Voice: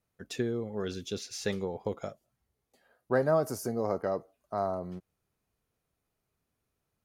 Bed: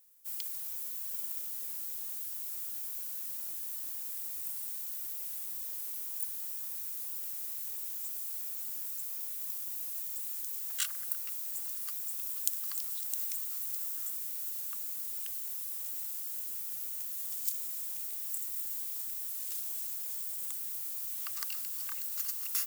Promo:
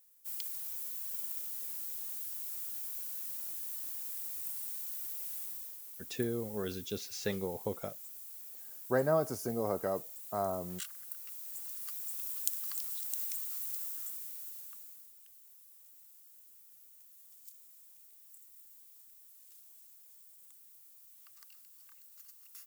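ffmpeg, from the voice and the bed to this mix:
ffmpeg -i stem1.wav -i stem2.wav -filter_complex "[0:a]adelay=5800,volume=-3dB[link_01];[1:a]volume=6dB,afade=type=out:start_time=5.42:duration=0.37:silence=0.398107,afade=type=in:start_time=11.08:duration=1.16:silence=0.421697,afade=type=out:start_time=13.69:duration=1.45:silence=0.133352[link_02];[link_01][link_02]amix=inputs=2:normalize=0" out.wav

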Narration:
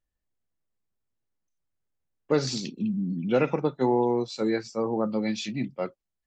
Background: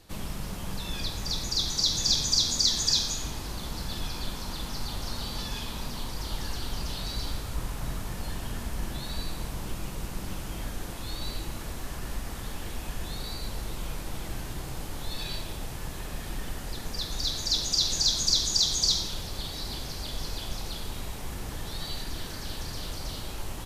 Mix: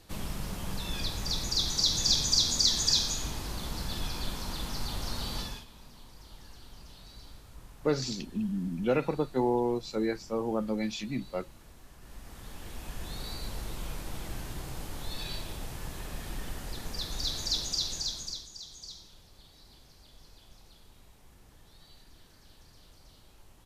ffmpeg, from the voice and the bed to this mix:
ffmpeg -i stem1.wav -i stem2.wav -filter_complex "[0:a]adelay=5550,volume=-4dB[link_01];[1:a]volume=13dB,afade=type=out:start_time=5.38:duration=0.27:silence=0.158489,afade=type=in:start_time=11.98:duration=1.29:silence=0.199526,afade=type=out:start_time=17.44:duration=1.04:silence=0.125893[link_02];[link_01][link_02]amix=inputs=2:normalize=0" out.wav

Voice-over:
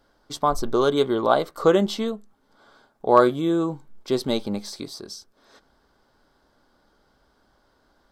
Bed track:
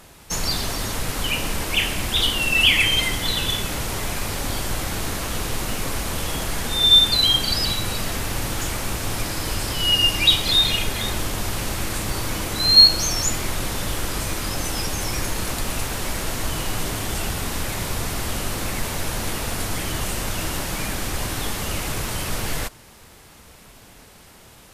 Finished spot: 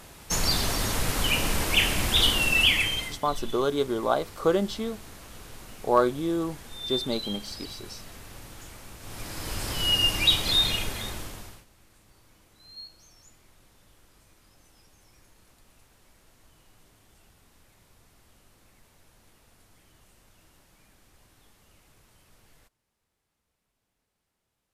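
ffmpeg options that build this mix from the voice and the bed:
ffmpeg -i stem1.wav -i stem2.wav -filter_complex "[0:a]adelay=2800,volume=-5.5dB[link_01];[1:a]volume=13dB,afade=type=out:start_time=2.3:duration=0.9:silence=0.125893,afade=type=in:start_time=8.99:duration=0.8:silence=0.199526,afade=type=out:start_time=10.63:duration=1.02:silence=0.0375837[link_02];[link_01][link_02]amix=inputs=2:normalize=0" out.wav

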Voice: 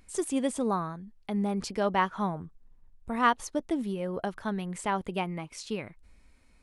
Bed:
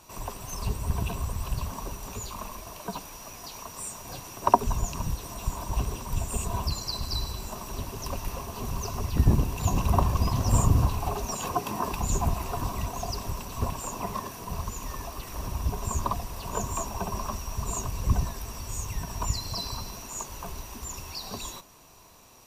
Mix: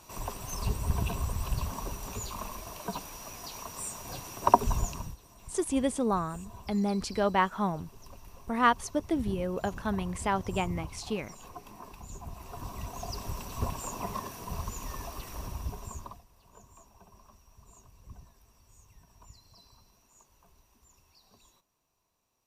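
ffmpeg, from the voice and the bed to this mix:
ffmpeg -i stem1.wav -i stem2.wav -filter_complex "[0:a]adelay=5400,volume=0.5dB[link_01];[1:a]volume=13.5dB,afade=type=out:start_time=4.8:duration=0.36:silence=0.149624,afade=type=in:start_time=12.25:duration=1.2:silence=0.188365,afade=type=out:start_time=15.19:duration=1.05:silence=0.0794328[link_02];[link_01][link_02]amix=inputs=2:normalize=0" out.wav

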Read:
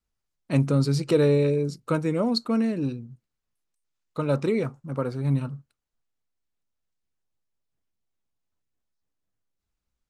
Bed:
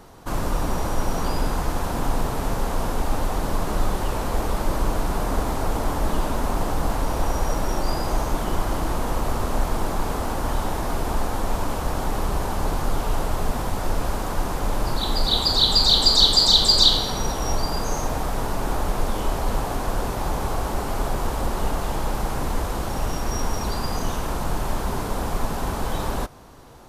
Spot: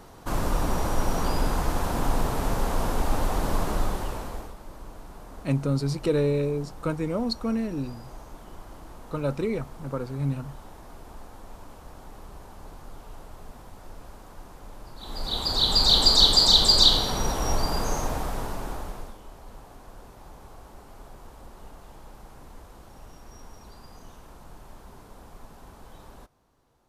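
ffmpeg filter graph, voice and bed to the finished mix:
ffmpeg -i stem1.wav -i stem2.wav -filter_complex "[0:a]adelay=4950,volume=-3.5dB[link_01];[1:a]volume=17dB,afade=type=out:start_time=3.59:duration=0.96:silence=0.11885,afade=type=in:start_time=14.96:duration=1:silence=0.11885,afade=type=out:start_time=17.83:duration=1.35:silence=0.1[link_02];[link_01][link_02]amix=inputs=2:normalize=0" out.wav

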